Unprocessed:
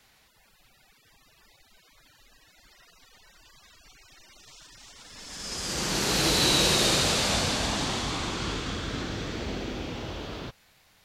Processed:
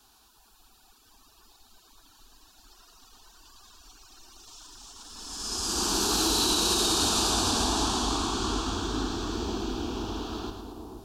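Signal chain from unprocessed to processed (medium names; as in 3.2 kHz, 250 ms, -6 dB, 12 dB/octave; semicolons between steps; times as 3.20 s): static phaser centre 550 Hz, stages 6; on a send: two-band feedback delay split 1 kHz, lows 475 ms, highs 108 ms, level -7 dB; on the sum: peak limiter -19.5 dBFS, peak gain reduction 7.5 dB; trim +4 dB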